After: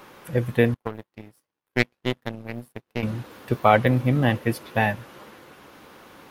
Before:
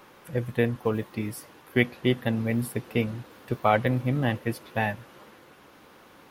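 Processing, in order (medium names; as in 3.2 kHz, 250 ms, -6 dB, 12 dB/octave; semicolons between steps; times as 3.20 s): 0.74–3.03 s: power-law waveshaper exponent 2; trim +5 dB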